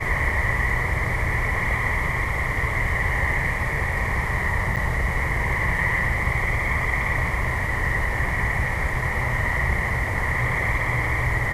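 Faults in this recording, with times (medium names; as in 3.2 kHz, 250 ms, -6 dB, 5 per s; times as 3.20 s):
4.76–4.77 s: dropout 7.7 ms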